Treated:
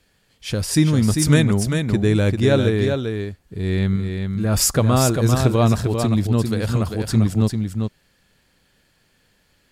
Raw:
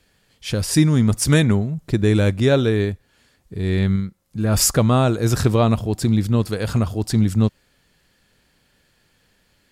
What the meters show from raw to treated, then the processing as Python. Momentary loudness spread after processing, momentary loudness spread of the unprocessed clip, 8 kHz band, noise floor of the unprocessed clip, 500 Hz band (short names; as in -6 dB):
10 LU, 9 LU, 0.0 dB, -63 dBFS, 0.0 dB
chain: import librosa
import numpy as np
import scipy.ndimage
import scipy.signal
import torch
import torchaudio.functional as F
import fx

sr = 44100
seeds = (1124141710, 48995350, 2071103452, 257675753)

y = x + 10.0 ** (-5.5 / 20.0) * np.pad(x, (int(396 * sr / 1000.0), 0))[:len(x)]
y = y * librosa.db_to_amplitude(-1.0)